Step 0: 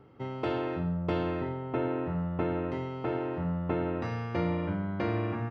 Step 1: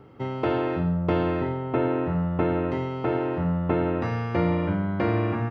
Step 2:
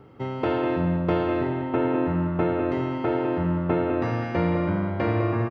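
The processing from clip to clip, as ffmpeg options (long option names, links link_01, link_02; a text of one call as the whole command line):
ffmpeg -i in.wav -filter_complex "[0:a]acrossover=split=2900[link_01][link_02];[link_02]acompressor=threshold=-56dB:ratio=4:attack=1:release=60[link_03];[link_01][link_03]amix=inputs=2:normalize=0,volume=6.5dB" out.wav
ffmpeg -i in.wav -filter_complex "[0:a]asplit=2[link_01][link_02];[link_02]adelay=203,lowpass=frequency=4400:poles=1,volume=-7dB,asplit=2[link_03][link_04];[link_04]adelay=203,lowpass=frequency=4400:poles=1,volume=0.47,asplit=2[link_05][link_06];[link_06]adelay=203,lowpass=frequency=4400:poles=1,volume=0.47,asplit=2[link_07][link_08];[link_08]adelay=203,lowpass=frequency=4400:poles=1,volume=0.47,asplit=2[link_09][link_10];[link_10]adelay=203,lowpass=frequency=4400:poles=1,volume=0.47,asplit=2[link_11][link_12];[link_12]adelay=203,lowpass=frequency=4400:poles=1,volume=0.47[link_13];[link_01][link_03][link_05][link_07][link_09][link_11][link_13]amix=inputs=7:normalize=0" out.wav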